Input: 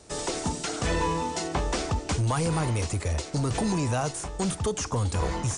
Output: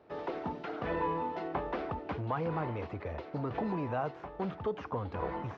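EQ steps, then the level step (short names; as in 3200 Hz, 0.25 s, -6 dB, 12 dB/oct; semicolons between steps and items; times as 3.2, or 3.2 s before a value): HPF 540 Hz 6 dB/oct; air absorption 290 m; tape spacing loss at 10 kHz 37 dB; +1.5 dB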